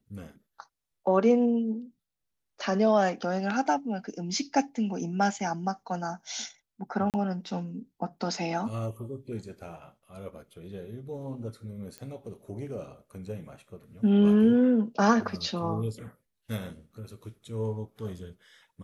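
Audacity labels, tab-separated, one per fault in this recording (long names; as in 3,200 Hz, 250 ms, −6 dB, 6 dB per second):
7.100000	7.140000	drop-out 38 ms
11.980000	11.980000	click −24 dBFS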